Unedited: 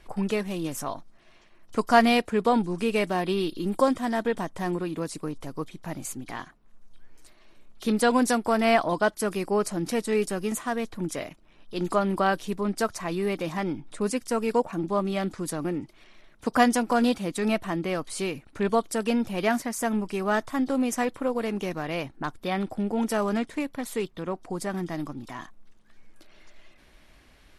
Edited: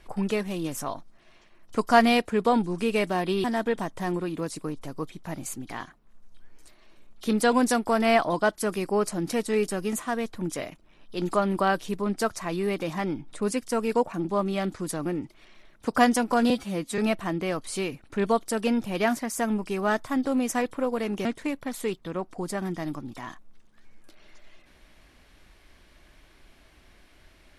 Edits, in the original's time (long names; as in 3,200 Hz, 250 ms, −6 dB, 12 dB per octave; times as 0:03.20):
0:03.44–0:04.03: remove
0:17.09–0:17.41: time-stretch 1.5×
0:21.68–0:23.37: remove